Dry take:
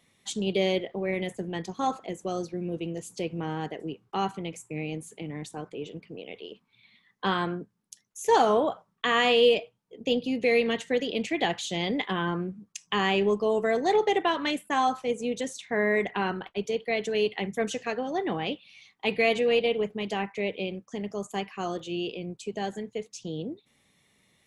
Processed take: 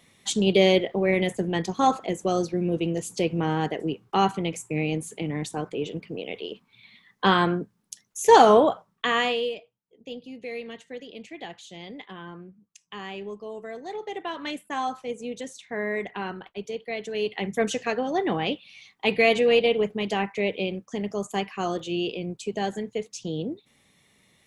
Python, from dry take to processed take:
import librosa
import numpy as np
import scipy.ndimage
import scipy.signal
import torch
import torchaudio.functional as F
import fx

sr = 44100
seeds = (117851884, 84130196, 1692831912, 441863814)

y = fx.gain(x, sr, db=fx.line((8.57, 7.0), (9.22, -0.5), (9.56, -12.0), (13.98, -12.0), (14.49, -4.0), (17.09, -4.0), (17.57, 4.0)))